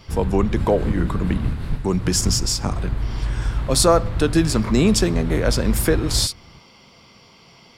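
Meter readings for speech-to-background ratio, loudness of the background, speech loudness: 5.5 dB, −26.5 LKFS, −21.0 LKFS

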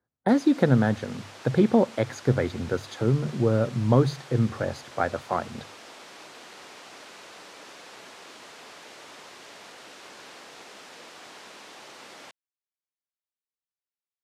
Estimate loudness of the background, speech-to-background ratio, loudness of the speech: −44.5 LKFS, 19.5 dB, −25.0 LKFS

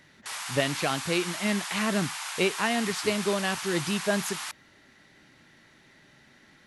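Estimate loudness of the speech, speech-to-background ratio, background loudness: −29.0 LKFS, 5.0 dB, −34.0 LKFS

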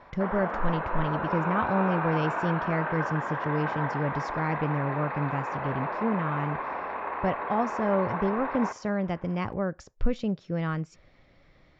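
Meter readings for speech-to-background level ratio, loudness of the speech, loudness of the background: 2.0 dB, −30.0 LKFS, −32.0 LKFS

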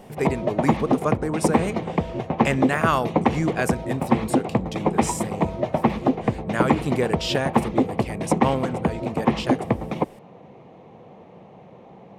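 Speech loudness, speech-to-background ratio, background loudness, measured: −27.5 LKFS, −3.0 dB, −24.5 LKFS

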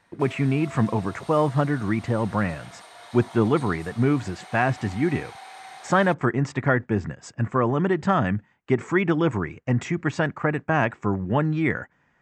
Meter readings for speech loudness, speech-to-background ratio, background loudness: −24.0 LKFS, 19.5 dB, −43.5 LKFS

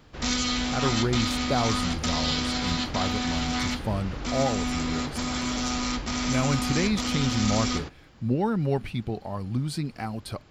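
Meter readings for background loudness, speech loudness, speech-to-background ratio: −28.0 LKFS, −30.0 LKFS, −2.0 dB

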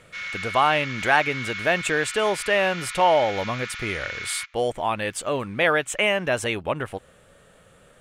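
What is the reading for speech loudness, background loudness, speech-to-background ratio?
−23.5 LKFS, −32.0 LKFS, 8.5 dB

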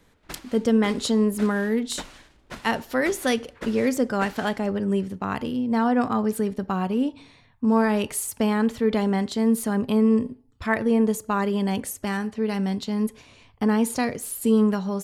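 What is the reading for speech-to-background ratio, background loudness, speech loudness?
19.0 dB, −43.0 LKFS, −24.0 LKFS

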